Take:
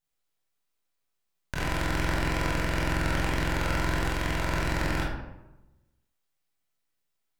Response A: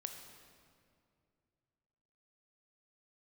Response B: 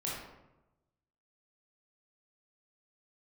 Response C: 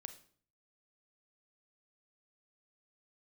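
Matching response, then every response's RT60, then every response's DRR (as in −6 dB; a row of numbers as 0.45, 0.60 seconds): B; 2.4, 1.0, 0.50 seconds; 5.0, −6.0, 9.0 decibels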